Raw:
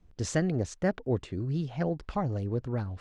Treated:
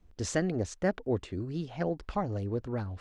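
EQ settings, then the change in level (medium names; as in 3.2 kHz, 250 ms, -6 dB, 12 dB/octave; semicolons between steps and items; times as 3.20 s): peaking EQ 140 Hz -9.5 dB 0.46 oct; 0.0 dB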